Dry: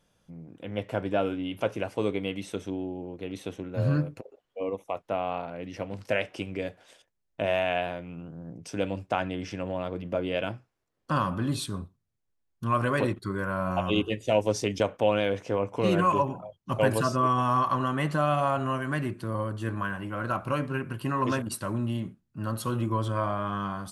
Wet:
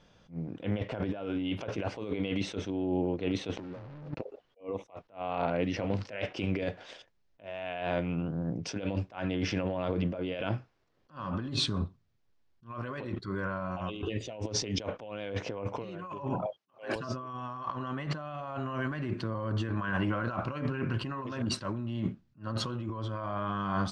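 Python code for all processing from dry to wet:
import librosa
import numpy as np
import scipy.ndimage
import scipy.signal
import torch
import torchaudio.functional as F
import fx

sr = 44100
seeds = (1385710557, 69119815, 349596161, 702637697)

y = fx.chain(x, sr, fx.highpass(hz=110.0, slope=24),
    fx.air_absorb(metres=290.0),
    fx.leveller(passes=5), at=(3.57, 4.19))
y = fx.chain(y, sr, fx.highpass(hz=480.0, slope=12),
    fx.notch(hz=950.0, q=16.0), at=(16.46, 16.96))
y = scipy.signal.sosfilt(scipy.signal.butter(4, 5500.0, 'lowpass', fs=sr, output='sos'), y)
y = fx.over_compress(y, sr, threshold_db=-36.0, ratio=-1.0)
y = fx.attack_slew(y, sr, db_per_s=240.0)
y = y * librosa.db_to_amplitude(1.5)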